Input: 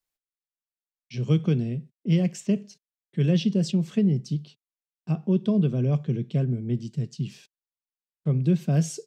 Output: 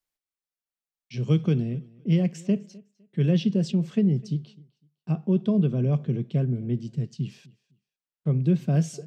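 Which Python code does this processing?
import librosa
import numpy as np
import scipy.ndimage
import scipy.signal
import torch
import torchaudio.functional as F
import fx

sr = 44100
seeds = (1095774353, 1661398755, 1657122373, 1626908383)

y = fx.high_shelf(x, sr, hz=4400.0, db=fx.steps((0.0, -2.0), (1.6, -7.5)))
y = fx.echo_feedback(y, sr, ms=254, feedback_pct=24, wet_db=-23.5)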